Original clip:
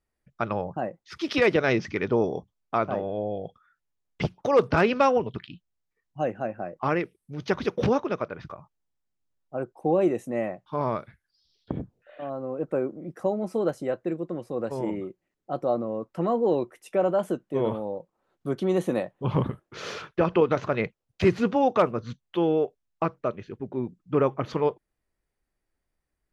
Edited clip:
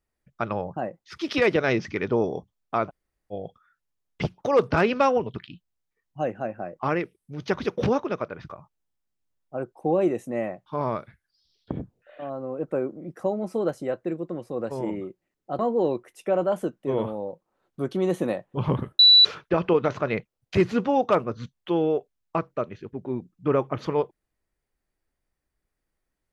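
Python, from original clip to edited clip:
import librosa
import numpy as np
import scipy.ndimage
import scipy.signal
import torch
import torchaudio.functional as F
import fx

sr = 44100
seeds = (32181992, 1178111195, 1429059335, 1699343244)

y = fx.edit(x, sr, fx.room_tone_fill(start_s=2.89, length_s=0.43, crossfade_s=0.04),
    fx.cut(start_s=15.59, length_s=0.67),
    fx.bleep(start_s=19.66, length_s=0.26, hz=3950.0, db=-10.0), tone=tone)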